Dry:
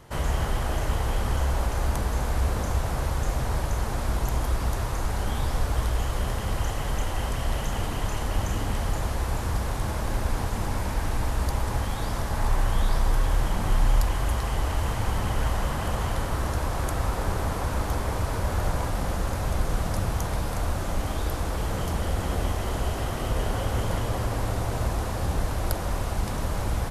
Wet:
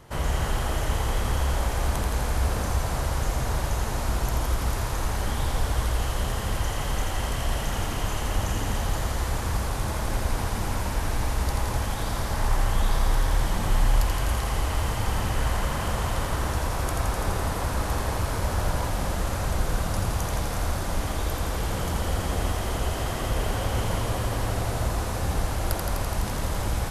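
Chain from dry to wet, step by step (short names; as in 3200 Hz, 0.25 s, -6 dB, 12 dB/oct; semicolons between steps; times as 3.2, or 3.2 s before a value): thinning echo 84 ms, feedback 83%, high-pass 1100 Hz, level -4 dB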